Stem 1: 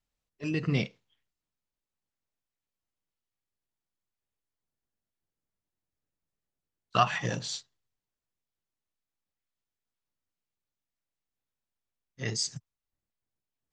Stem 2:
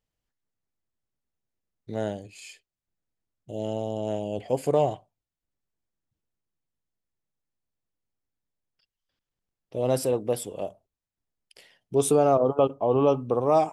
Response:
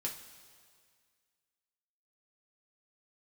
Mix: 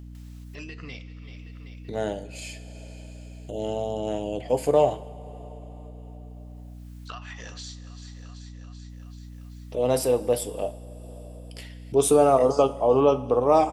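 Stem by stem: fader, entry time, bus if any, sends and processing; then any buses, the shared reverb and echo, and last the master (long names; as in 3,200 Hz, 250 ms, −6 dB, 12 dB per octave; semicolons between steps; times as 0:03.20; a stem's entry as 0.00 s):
−7.5 dB, 0.15 s, muted 0:08.23–0:08.89, send −8.5 dB, echo send −19 dB, high-pass filter 1,100 Hz 6 dB per octave; downward compressor 3 to 1, threshold −38 dBFS, peak gain reduction 13 dB
0.0 dB, 0.00 s, send −4 dB, no echo send, high-pass filter 300 Hz 6 dB per octave; downward expander −50 dBFS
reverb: on, pre-delay 3 ms
echo: repeating echo 385 ms, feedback 40%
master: upward compression, threshold −34 dBFS; mains hum 60 Hz, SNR 14 dB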